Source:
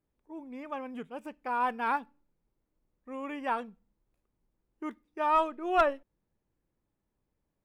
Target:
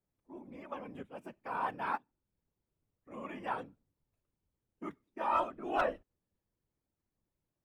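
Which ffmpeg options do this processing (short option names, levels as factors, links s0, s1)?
-filter_complex "[0:a]asplit=3[s0][s1][s2];[s0]afade=t=out:st=1.96:d=0.02[s3];[s1]acompressor=threshold=0.00355:ratio=4,afade=t=in:st=1.96:d=0.02,afade=t=out:st=3.1:d=0.02[s4];[s2]afade=t=in:st=3.1:d=0.02[s5];[s3][s4][s5]amix=inputs=3:normalize=0,afftfilt=real='hypot(re,im)*cos(2*PI*random(0))':imag='hypot(re,im)*sin(2*PI*random(1))':win_size=512:overlap=0.75"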